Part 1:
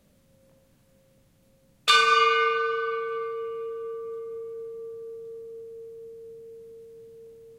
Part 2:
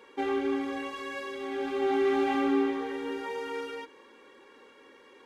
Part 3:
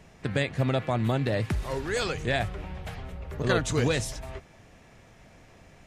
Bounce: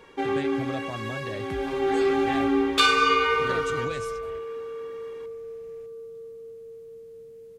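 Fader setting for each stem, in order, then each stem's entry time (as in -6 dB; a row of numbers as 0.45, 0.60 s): -1.0, +3.0, -9.5 dB; 0.90, 0.00, 0.00 s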